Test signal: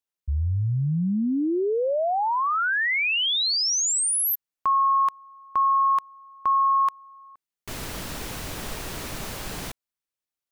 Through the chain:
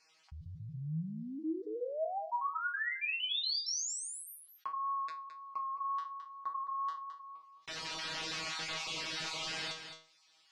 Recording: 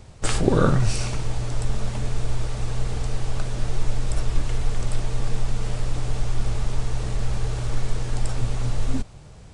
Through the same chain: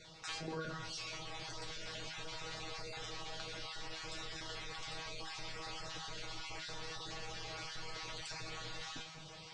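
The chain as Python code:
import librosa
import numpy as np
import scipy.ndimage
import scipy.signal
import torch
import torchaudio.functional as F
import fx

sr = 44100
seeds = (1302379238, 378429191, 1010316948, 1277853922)

y = fx.spec_dropout(x, sr, seeds[0], share_pct=22)
y = scipy.signal.sosfilt(scipy.signal.butter(4, 5000.0, 'lowpass', fs=sr, output='sos'), y)
y = fx.tilt_eq(y, sr, slope=4.0)
y = fx.rider(y, sr, range_db=4, speed_s=0.5)
y = fx.wow_flutter(y, sr, seeds[1], rate_hz=2.1, depth_cents=19.0)
y = fx.comb_fb(y, sr, f0_hz=160.0, decay_s=0.22, harmonics='all', damping=0.1, mix_pct=100)
y = y + 10.0 ** (-18.0 / 20.0) * np.pad(y, (int(215 * sr / 1000.0), 0))[:len(y)]
y = fx.env_flatten(y, sr, amount_pct=50)
y = F.gain(torch.from_numpy(y), -5.5).numpy()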